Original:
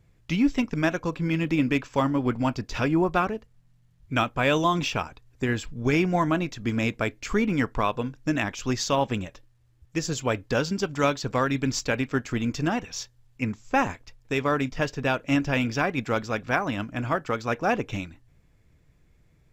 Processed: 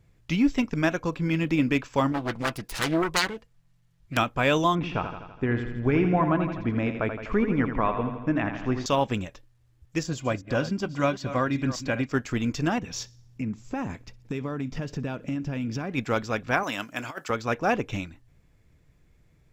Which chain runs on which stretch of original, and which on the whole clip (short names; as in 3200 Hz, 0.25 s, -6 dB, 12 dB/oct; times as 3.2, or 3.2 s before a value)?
2.12–4.17 self-modulated delay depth 0.7 ms + low shelf 480 Hz -5 dB + comb 6 ms, depth 37%
4.75–8.86 LPF 1800 Hz + feedback echo 83 ms, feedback 60%, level -8 dB
10.03–12.12 reverse delay 0.192 s, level -12.5 dB + high shelf 3300 Hz -8 dB + notch comb 440 Hz
12.78–15.92 bell 180 Hz +12 dB 2.4 oct + compressor 5:1, threshold -28 dBFS + thin delay 62 ms, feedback 51%, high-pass 1900 Hz, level -23.5 dB
16.63–17.3 HPF 590 Hz 6 dB/oct + high shelf 5500 Hz +11.5 dB + negative-ratio compressor -31 dBFS, ratio -0.5
whole clip: dry